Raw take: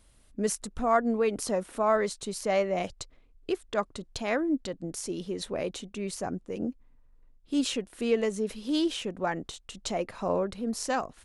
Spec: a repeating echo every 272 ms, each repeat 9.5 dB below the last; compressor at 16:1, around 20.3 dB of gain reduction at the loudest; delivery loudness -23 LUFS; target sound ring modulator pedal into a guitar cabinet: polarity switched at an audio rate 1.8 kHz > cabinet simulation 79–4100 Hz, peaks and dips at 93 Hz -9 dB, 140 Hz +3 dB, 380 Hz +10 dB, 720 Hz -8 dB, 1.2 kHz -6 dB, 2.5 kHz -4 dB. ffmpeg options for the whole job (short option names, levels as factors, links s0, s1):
-af "acompressor=threshold=0.01:ratio=16,aecho=1:1:272|544|816|1088:0.335|0.111|0.0365|0.012,aeval=exprs='val(0)*sgn(sin(2*PI*1800*n/s))':c=same,highpass=79,equalizer=f=93:t=q:w=4:g=-9,equalizer=f=140:t=q:w=4:g=3,equalizer=f=380:t=q:w=4:g=10,equalizer=f=720:t=q:w=4:g=-8,equalizer=f=1200:t=q:w=4:g=-6,equalizer=f=2500:t=q:w=4:g=-4,lowpass=f=4100:w=0.5412,lowpass=f=4100:w=1.3066,volume=14.1"